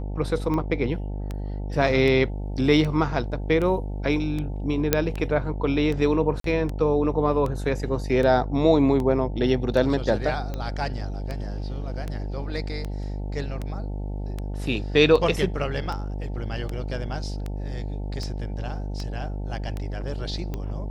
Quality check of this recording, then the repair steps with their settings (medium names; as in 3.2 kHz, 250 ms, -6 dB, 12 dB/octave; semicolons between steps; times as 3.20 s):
buzz 50 Hz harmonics 18 -30 dBFS
tick 78 rpm -18 dBFS
4.93 s: pop -2 dBFS
6.40–6.44 s: dropout 43 ms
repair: de-click; de-hum 50 Hz, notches 18; interpolate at 6.40 s, 43 ms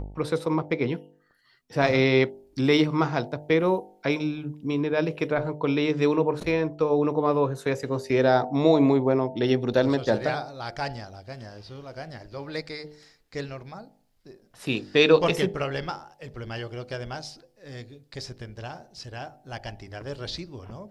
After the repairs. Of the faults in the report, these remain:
nothing left